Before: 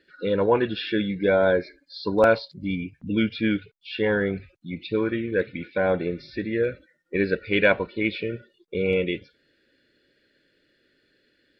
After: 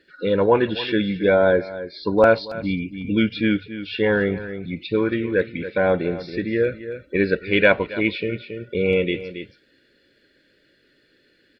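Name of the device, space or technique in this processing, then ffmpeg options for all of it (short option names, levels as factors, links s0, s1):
ducked delay: -filter_complex "[0:a]asplit=3[s0][s1][s2];[s1]adelay=275,volume=0.708[s3];[s2]apad=whole_len=523537[s4];[s3][s4]sidechaincompress=threshold=0.02:ratio=10:attack=9.2:release=467[s5];[s0][s5]amix=inputs=2:normalize=0,asettb=1/sr,asplit=3[s6][s7][s8];[s6]atrim=end=1.344[s9];[s7]atrim=start=1.34:end=2.38,asetpts=PTS-STARTPTS,afade=t=in:d=0.004:c=qsin,afade=t=out:st=1.036:d=0.004:c=qsin,highshelf=f=3800:g=-7.5[s10];[s8]atrim=start=2.376[s11];[s9][s10]acrossfade=d=0.004:c1=hsin:c2=qsin[s12];[s12][s11]acrossfade=d=0.004:c1=qsin:c2=hsin,volume=1.5"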